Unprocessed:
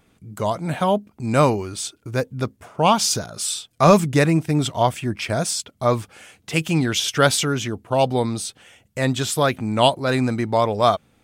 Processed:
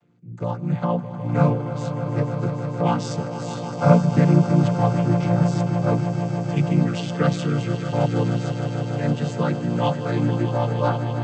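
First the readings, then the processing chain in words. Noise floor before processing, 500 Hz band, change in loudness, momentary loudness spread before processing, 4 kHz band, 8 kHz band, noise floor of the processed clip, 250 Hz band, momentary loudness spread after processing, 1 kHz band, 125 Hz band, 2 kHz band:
-62 dBFS, -4.0 dB, -1.0 dB, 9 LU, -13.0 dB, under -15 dB, -32 dBFS, +1.5 dB, 9 LU, -5.5 dB, +4.5 dB, -7.0 dB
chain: chord vocoder major triad, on A#2; on a send: swelling echo 0.154 s, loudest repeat 5, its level -12 dB; on the sum: gain -1 dB

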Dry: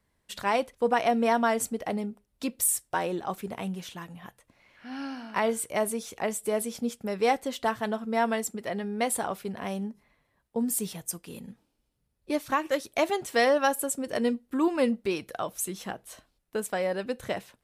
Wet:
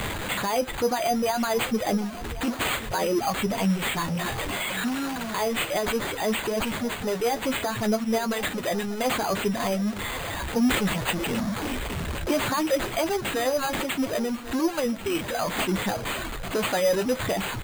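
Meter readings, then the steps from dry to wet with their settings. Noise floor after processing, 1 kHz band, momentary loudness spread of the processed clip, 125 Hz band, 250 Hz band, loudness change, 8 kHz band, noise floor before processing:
-34 dBFS, +1.5 dB, 5 LU, +10.5 dB, +4.5 dB, +2.5 dB, -0.5 dB, -75 dBFS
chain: zero-crossing step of -26 dBFS; reverb removal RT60 1.4 s; limiter -20.5 dBFS, peak gain reduction 9 dB; vocal rider 2 s; flange 0.62 Hz, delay 8.4 ms, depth 4.4 ms, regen +47%; on a send: echo 1.09 s -16.5 dB; on the sum: careless resampling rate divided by 8×, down none, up hold; gain +6.5 dB

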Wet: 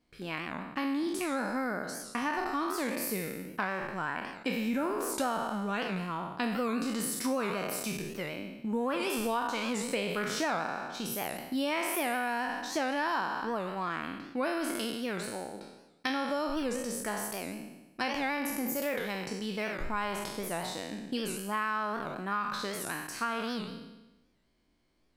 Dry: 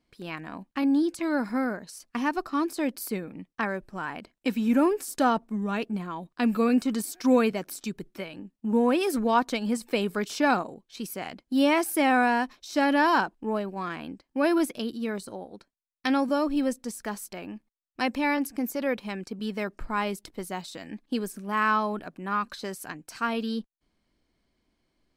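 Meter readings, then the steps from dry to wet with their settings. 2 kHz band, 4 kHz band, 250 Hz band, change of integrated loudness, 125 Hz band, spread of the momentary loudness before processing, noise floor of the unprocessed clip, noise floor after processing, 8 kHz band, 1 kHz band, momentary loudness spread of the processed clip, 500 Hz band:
-3.5 dB, -1.0 dB, -8.0 dB, -6.0 dB, -2.5 dB, 14 LU, -79 dBFS, -64 dBFS, +1.0 dB, -5.0 dB, 6 LU, -5.5 dB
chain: spectral trails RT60 1.02 s; dynamic EQ 270 Hz, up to -4 dB, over -36 dBFS, Q 1; compressor 6:1, threshold -26 dBFS, peak gain reduction 10 dB; record warp 78 rpm, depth 160 cents; gain -2 dB

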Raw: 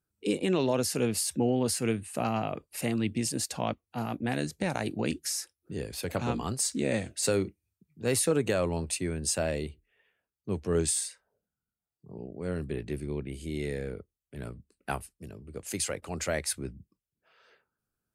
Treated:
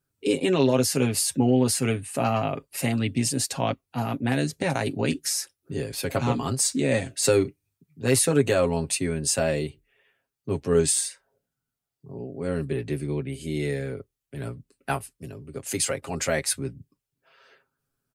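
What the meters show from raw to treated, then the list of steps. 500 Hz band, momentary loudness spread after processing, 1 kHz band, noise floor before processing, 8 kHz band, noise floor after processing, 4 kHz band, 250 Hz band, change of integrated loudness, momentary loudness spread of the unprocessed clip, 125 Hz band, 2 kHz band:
+6.0 dB, 15 LU, +5.0 dB, under -85 dBFS, +5.5 dB, -85 dBFS, +5.5 dB, +5.5 dB, +5.5 dB, 15 LU, +6.5 dB, +6.0 dB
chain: comb 7.4 ms, depth 68%; gain +4 dB

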